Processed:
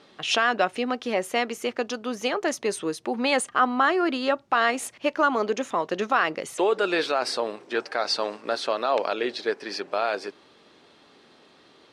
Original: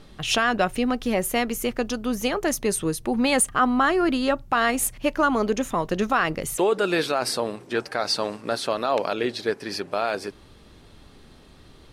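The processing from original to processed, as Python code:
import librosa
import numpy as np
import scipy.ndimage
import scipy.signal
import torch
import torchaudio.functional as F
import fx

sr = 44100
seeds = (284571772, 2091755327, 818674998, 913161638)

y = fx.bandpass_edges(x, sr, low_hz=330.0, high_hz=5900.0)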